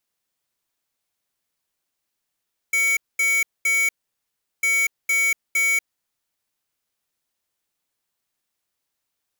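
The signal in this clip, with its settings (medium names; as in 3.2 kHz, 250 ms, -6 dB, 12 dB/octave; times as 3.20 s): beep pattern square 2.25 kHz, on 0.24 s, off 0.22 s, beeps 3, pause 0.74 s, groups 2, -19.5 dBFS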